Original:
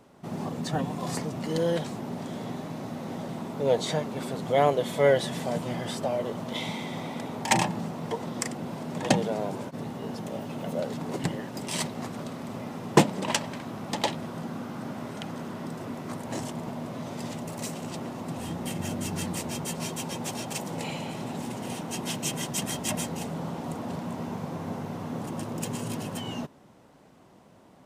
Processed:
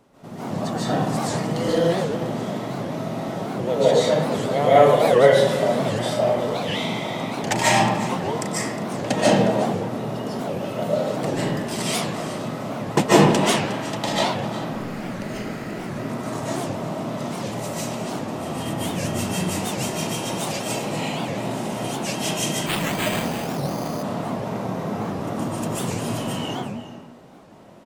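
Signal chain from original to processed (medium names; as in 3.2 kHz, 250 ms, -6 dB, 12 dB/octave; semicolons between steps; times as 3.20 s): 14.61–15.88 s: comb filter that takes the minimum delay 0.44 ms; delay 360 ms -14.5 dB; reverberation RT60 1.1 s, pre-delay 105 ms, DRR -10 dB; 22.66–24.03 s: careless resampling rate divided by 8×, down none, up hold; warped record 78 rpm, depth 250 cents; trim -2 dB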